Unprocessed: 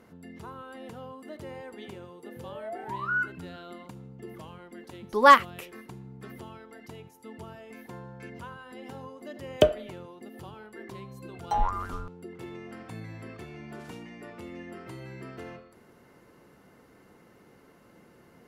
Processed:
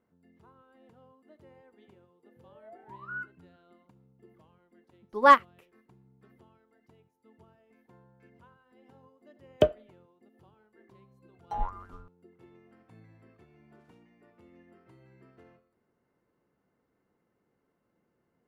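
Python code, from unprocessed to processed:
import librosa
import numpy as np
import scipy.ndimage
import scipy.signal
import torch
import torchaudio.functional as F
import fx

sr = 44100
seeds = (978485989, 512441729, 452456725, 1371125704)

y = fx.high_shelf(x, sr, hz=3000.0, db=-10.0)
y = fx.upward_expand(y, sr, threshold_db=-50.0, expansion=1.5)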